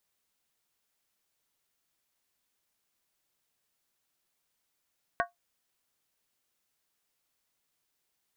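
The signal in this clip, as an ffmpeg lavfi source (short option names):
-f lavfi -i "aevalsrc='0.0668*pow(10,-3*t/0.15)*sin(2*PI*697*t)+0.0562*pow(10,-3*t/0.119)*sin(2*PI*1111*t)+0.0473*pow(10,-3*t/0.103)*sin(2*PI*1488.8*t)+0.0398*pow(10,-3*t/0.099)*sin(2*PI*1600.3*t)+0.0335*pow(10,-3*t/0.092)*sin(2*PI*1849.1*t)':d=0.63:s=44100"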